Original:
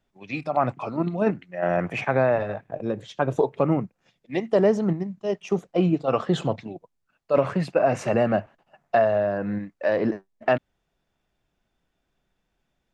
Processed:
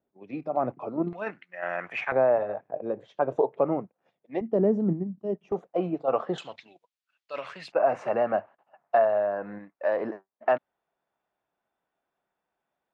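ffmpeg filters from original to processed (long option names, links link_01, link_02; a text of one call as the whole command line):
ffmpeg -i in.wav -af "asetnsamples=nb_out_samples=441:pad=0,asendcmd='1.13 bandpass f 1800;2.12 bandpass f 630;4.41 bandpass f 260;5.52 bandpass f 710;6.38 bandpass f 3300;7.72 bandpass f 890',bandpass=frequency=410:width_type=q:width=1.1:csg=0" out.wav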